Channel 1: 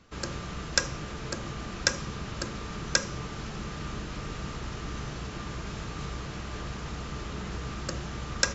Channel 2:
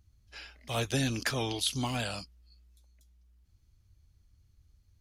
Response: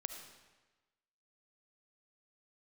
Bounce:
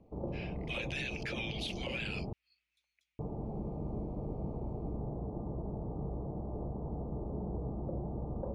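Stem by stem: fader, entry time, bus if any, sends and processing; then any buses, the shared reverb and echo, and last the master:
+1.5 dB, 0.00 s, muted 2.33–3.19 s, no send, steep low-pass 840 Hz 48 dB/octave; bass shelf 170 Hz -4.5 dB
+2.0 dB, 0.00 s, no send, level rider gain up to 5.5 dB; band-pass filter 2.4 kHz, Q 4.3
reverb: none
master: peak limiter -28 dBFS, peak gain reduction 11 dB

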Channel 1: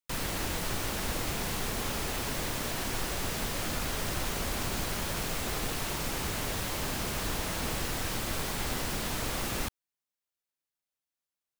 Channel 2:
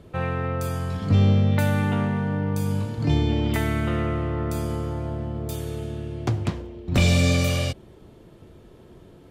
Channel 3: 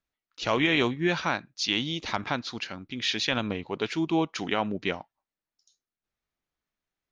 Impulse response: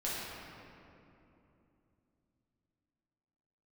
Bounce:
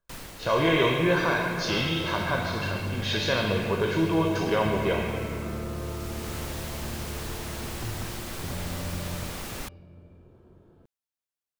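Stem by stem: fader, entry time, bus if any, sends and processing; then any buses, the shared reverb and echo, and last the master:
-3.5 dB, 0.00 s, no bus, no send, auto duck -9 dB, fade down 0.45 s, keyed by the third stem
-10.5 dB, 1.55 s, bus A, send -10.5 dB, peak limiter -19 dBFS, peak gain reduction 8.5 dB
+2.0 dB, 0.00 s, bus A, send -7.5 dB, comb 1.9 ms, depth 63%
bus A: 0.0 dB, brick-wall FIR low-pass 1.7 kHz; peak limiter -20 dBFS, peak gain reduction 10.5 dB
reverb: on, RT60 2.9 s, pre-delay 5 ms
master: none

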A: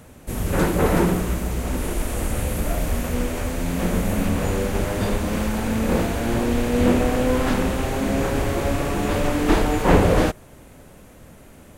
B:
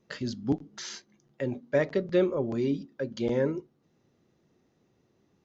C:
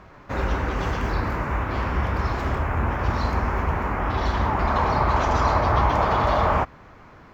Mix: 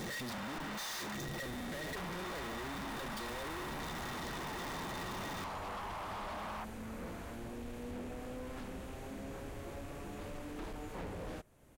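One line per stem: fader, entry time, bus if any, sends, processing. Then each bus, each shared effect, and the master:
-17.0 dB, 1.10 s, no send, compression 1.5:1, threshold -33 dBFS, peak gain reduction 8.5 dB
-9.0 dB, 0.00 s, no send, one-bit comparator; small resonant body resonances 1.9/3.6 kHz, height 17 dB
-3.5 dB, 0.00 s, muted 1.15–1.96 s, no send, steep high-pass 610 Hz 36 dB/octave; compression 4:1, threshold -36 dBFS, peak gain reduction 14.5 dB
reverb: none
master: hard clipper -39.5 dBFS, distortion -8 dB

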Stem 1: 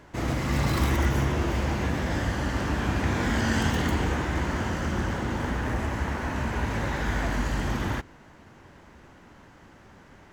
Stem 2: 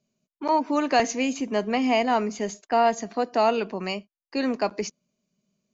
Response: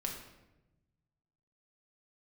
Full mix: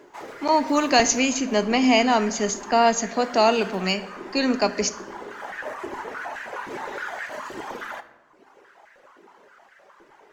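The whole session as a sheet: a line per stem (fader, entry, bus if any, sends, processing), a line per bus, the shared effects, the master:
-4.5 dB, 0.00 s, send -5.5 dB, reverb removal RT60 0.98 s; compression 1.5:1, threshold -31 dBFS, peak gain reduction 4 dB; step-sequenced high-pass 9.6 Hz 370–1700 Hz; auto duck -17 dB, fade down 0.40 s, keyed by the second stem
-0.5 dB, 0.00 s, send -8.5 dB, treble shelf 3.3 kHz +11.5 dB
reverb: on, RT60 1.0 s, pre-delay 5 ms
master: bass shelf 87 Hz +10.5 dB

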